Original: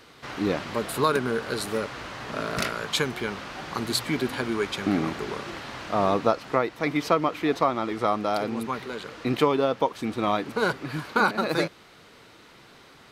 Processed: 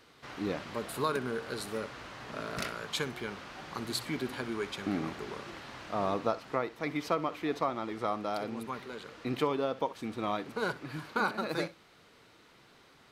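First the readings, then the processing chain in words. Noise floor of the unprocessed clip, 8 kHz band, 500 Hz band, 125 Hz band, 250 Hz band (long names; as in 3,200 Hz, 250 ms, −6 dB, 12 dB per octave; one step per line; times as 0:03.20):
−52 dBFS, −8.5 dB, −8.5 dB, −8.5 dB, −8.5 dB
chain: flutter between parallel walls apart 10.9 metres, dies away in 0.22 s
level −8.5 dB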